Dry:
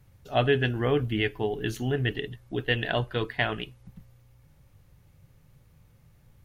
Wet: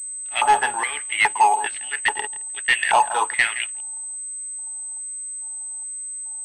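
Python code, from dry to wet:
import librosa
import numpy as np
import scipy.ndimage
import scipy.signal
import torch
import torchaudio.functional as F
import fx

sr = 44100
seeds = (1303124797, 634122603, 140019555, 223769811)

y = fx.diode_clip(x, sr, knee_db=-20.0)
y = fx.air_absorb(y, sr, metres=65.0)
y = y + 10.0 ** (-16.5 / 20.0) * np.pad(y, (int(167 * sr / 1000.0), 0))[:len(y)]
y = fx.filter_lfo_highpass(y, sr, shape='square', hz=1.2, low_hz=880.0, high_hz=2100.0, q=4.5)
y = fx.peak_eq(y, sr, hz=870.0, db=14.0, octaves=0.27)
y = fx.leveller(y, sr, passes=2)
y = fx.pwm(y, sr, carrier_hz=8200.0)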